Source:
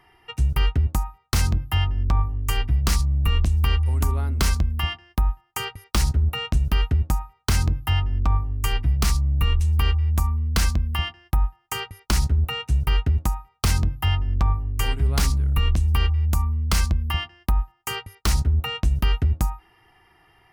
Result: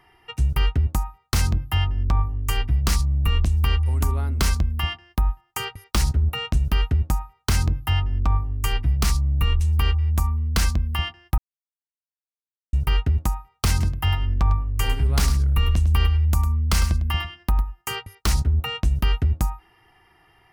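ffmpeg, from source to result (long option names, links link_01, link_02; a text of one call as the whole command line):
ffmpeg -i in.wav -filter_complex "[0:a]asettb=1/sr,asplit=3[link_01][link_02][link_03];[link_01]atrim=end=13.704[link_04];[link_02]atrim=start=13.7:end=17.94,asetpts=PTS-STARTPTS,afade=type=in:duration=0.004:curve=qsin,afade=type=out:start_time=4.236:duration=0.004:curve=qsin,aecho=1:1:103:0.266,atrim=end_sample=186984[link_05];[link_03]atrim=start=17.936[link_06];[link_04][link_05]acrossfade=duration=0.004:curve1=hsin:curve2=qsin[link_07];[link_07][link_06]acrossfade=duration=0.004:curve1=qsin:curve2=hsin,asplit=3[link_08][link_09][link_10];[link_08]atrim=end=11.38,asetpts=PTS-STARTPTS,afade=type=out:start_time=11.376:duration=0.004:curve=hsin[link_11];[link_09]atrim=start=11.38:end=12.73,asetpts=PTS-STARTPTS,volume=0[link_12];[link_10]atrim=start=12.73,asetpts=PTS-STARTPTS,afade=type=in:duration=0.004:curve=hsin[link_13];[link_11][link_12][link_13]concat=n=3:v=0:a=1" out.wav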